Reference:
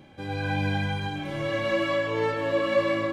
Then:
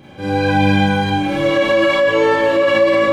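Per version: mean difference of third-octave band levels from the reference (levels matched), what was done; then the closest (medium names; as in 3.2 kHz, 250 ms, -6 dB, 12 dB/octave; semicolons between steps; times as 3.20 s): 3.0 dB: Schroeder reverb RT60 0.35 s, combs from 30 ms, DRR -5 dB; in parallel at -0.5 dB: compressor with a negative ratio -19 dBFS, ratio -0.5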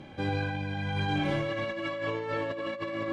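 4.5 dB: compressor with a negative ratio -32 dBFS, ratio -1; distance through air 51 m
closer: first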